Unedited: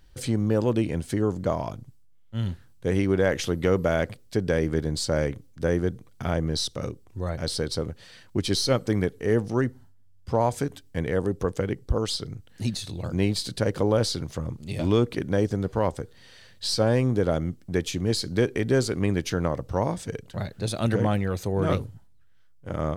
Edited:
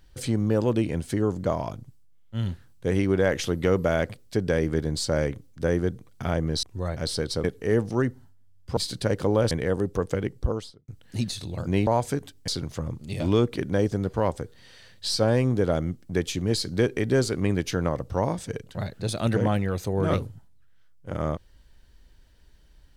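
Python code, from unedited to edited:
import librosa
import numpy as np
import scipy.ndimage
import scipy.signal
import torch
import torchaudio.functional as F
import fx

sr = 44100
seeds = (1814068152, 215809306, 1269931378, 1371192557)

y = fx.studio_fade_out(x, sr, start_s=11.83, length_s=0.51)
y = fx.edit(y, sr, fx.cut(start_s=6.63, length_s=0.41),
    fx.cut(start_s=7.85, length_s=1.18),
    fx.swap(start_s=10.36, length_s=0.61, other_s=13.33, other_length_s=0.74), tone=tone)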